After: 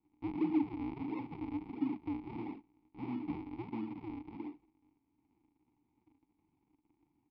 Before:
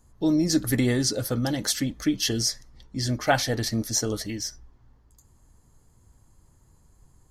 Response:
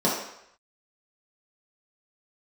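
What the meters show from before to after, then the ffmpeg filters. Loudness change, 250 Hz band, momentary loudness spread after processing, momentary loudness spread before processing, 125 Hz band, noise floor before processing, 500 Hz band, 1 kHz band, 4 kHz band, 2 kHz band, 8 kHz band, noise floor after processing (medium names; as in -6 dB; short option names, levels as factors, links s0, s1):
-14.5 dB, -10.5 dB, 13 LU, 9 LU, -20.5 dB, -60 dBFS, -18.0 dB, -14.0 dB, under -35 dB, -23.0 dB, under -40 dB, -80 dBFS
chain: -filter_complex "[0:a]aecho=1:1:41|77:0.422|0.316,asplit=2[s0][s1];[s1]acrusher=bits=4:mix=0:aa=0.000001,volume=0.376[s2];[s0][s2]amix=inputs=2:normalize=0,asoftclip=type=tanh:threshold=0.0944,aresample=11025,acrusher=samples=34:mix=1:aa=0.000001:lfo=1:lforange=54.4:lforate=1.5,aresample=44100,asplit=3[s3][s4][s5];[s3]bandpass=f=300:t=q:w=8,volume=1[s6];[s4]bandpass=f=870:t=q:w=8,volume=0.501[s7];[s5]bandpass=f=2240:t=q:w=8,volume=0.355[s8];[s6][s7][s8]amix=inputs=3:normalize=0,aemphasis=mode=reproduction:type=75kf"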